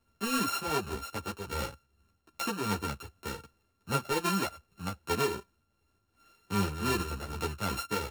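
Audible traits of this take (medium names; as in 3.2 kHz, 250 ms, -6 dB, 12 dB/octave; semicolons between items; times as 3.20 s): a buzz of ramps at a fixed pitch in blocks of 32 samples; tremolo triangle 2.6 Hz, depth 55%; a shimmering, thickened sound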